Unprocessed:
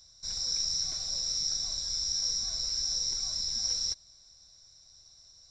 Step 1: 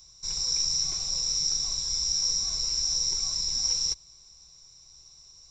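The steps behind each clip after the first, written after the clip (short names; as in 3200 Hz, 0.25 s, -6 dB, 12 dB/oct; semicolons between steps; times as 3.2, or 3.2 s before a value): ripple EQ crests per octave 0.72, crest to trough 9 dB; gain +3.5 dB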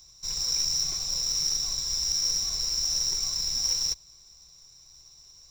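short-mantissa float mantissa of 2-bit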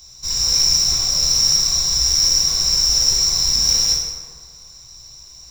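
plate-style reverb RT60 1.7 s, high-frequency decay 0.55×, DRR -3.5 dB; gain +7.5 dB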